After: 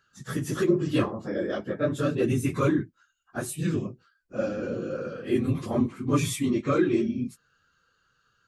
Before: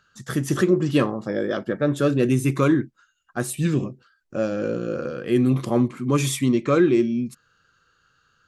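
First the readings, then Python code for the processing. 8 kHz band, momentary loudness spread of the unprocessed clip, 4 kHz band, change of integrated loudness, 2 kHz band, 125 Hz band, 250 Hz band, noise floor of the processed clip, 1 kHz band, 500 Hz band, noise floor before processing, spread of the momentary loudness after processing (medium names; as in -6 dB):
-5.0 dB, 10 LU, -5.0 dB, -5.0 dB, -5.0 dB, -5.5 dB, -5.0 dB, -70 dBFS, -4.0 dB, -5.0 dB, -67 dBFS, 10 LU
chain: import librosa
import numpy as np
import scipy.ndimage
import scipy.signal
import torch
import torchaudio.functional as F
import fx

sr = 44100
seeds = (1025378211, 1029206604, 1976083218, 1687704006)

y = fx.phase_scramble(x, sr, seeds[0], window_ms=50)
y = y * librosa.db_to_amplitude(-5.0)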